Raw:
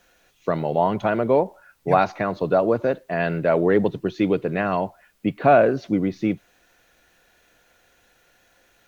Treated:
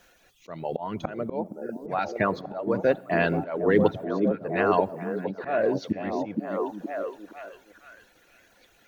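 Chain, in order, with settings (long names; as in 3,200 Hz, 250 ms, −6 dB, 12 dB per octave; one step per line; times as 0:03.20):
harmonic and percussive parts rebalanced percussive +3 dB
reverb reduction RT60 0.95 s
volume swells 394 ms
echo through a band-pass that steps 467 ms, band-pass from 240 Hz, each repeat 0.7 octaves, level −0.5 dB
on a send at −23 dB: convolution reverb RT60 1.0 s, pre-delay 3 ms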